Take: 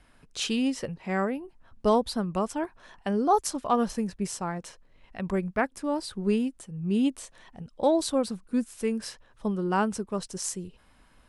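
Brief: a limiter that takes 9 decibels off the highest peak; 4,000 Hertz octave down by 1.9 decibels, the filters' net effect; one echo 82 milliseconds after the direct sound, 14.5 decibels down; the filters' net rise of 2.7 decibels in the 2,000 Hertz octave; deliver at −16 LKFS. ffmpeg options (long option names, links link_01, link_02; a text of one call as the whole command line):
ffmpeg -i in.wav -af "equalizer=frequency=2000:width_type=o:gain=4.5,equalizer=frequency=4000:width_type=o:gain=-4,alimiter=limit=-20dB:level=0:latency=1,aecho=1:1:82:0.188,volume=15dB" out.wav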